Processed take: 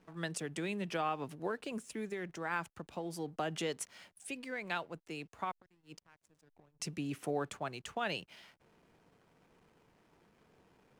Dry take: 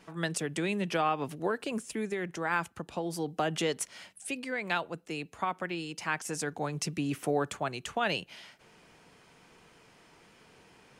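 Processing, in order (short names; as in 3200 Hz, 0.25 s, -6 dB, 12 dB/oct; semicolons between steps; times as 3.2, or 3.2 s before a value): 5.51–6.8 flipped gate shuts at -29 dBFS, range -25 dB; backlash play -53 dBFS; gain -6.5 dB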